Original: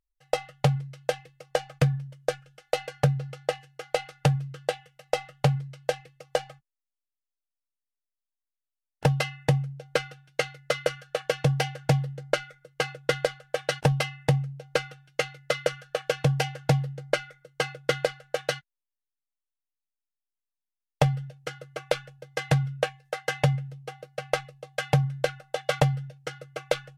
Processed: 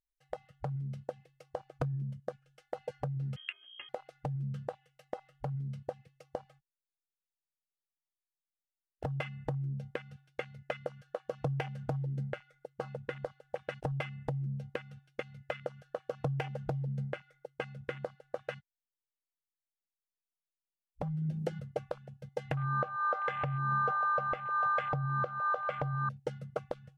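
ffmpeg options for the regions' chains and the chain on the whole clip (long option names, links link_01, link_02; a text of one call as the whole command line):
ffmpeg -i in.wav -filter_complex "[0:a]asettb=1/sr,asplit=3[link_01][link_02][link_03];[link_01]atrim=end=3.364[link_04];[link_02]atrim=start=3.36:end=3.89,asetpts=PTS-STARTPTS,afade=type=in:duration=0.004:curve=qsin,afade=type=out:start_time=0.526:duration=0.004:curve=qsin,equalizer=frequency=1100:width_type=o:width=0.28:gain=8.5,aeval=exprs='val(0)+0.00794*(sin(2*PI*60*n/s)+sin(2*PI*2*60*n/s)/2+sin(2*PI*3*60*n/s)/3+sin(2*PI*4*60*n/s)/4+sin(2*PI*5*60*n/s)/5)':channel_layout=same,lowpass=frequency=2800:width_type=q:width=0.5098,lowpass=frequency=2800:width_type=q:width=0.6013,lowpass=frequency=2800:width_type=q:width=0.9,lowpass=frequency=2800:width_type=q:width=2.563,afreqshift=-3300[link_05];[link_03]atrim=start=3.886[link_06];[link_04][link_05]acrossfade=duration=0.004:curve1=hsin:curve2=qsin[link_07];[link_07][link_06]acrossfade=duration=0.004:curve1=qsin:curve2=hsin,asettb=1/sr,asplit=3[link_08][link_09][link_10];[link_08]atrim=end=21.024[link_11];[link_09]atrim=start=21.02:end=21.6,asetpts=PTS-STARTPTS,afade=type=in:duration=0.004:curve=qsin,afade=type=out:start_time=0.576:duration=0.004:curve=qsin,acompressor=mode=upward:threshold=-30dB:ratio=2.5:attack=3.2:release=140:knee=2.83:detection=peak,afreqshift=20[link_12];[link_10]atrim=start=21.596[link_13];[link_11][link_12]acrossfade=duration=0.004:curve1=hsin:curve2=qsin[link_14];[link_14][link_13]acrossfade=duration=0.004:curve1=qsin:curve2=hsin,asettb=1/sr,asplit=3[link_15][link_16][link_17];[link_15]atrim=end=22.574[link_18];[link_16]atrim=start=22.57:end=26.09,asetpts=PTS-STARTPTS,afade=type=in:duration=0.004:curve=qsin,afade=type=out:start_time=3.516:duration=0.004:curve=qsin,lowpass=4700,aeval=exprs='val(0)+0.0282*sin(2*PI*1200*n/s)':channel_layout=same[link_19];[link_17]atrim=start=26.086[link_20];[link_18][link_19]acrossfade=duration=0.004:curve1=hsin:curve2=qsin[link_21];[link_21][link_20]acrossfade=duration=0.004:curve1=qsin:curve2=hsin,afwtdn=0.0282,acompressor=threshold=-32dB:ratio=6,alimiter=level_in=4dB:limit=-24dB:level=0:latency=1:release=218,volume=-4dB,volume=7dB" out.wav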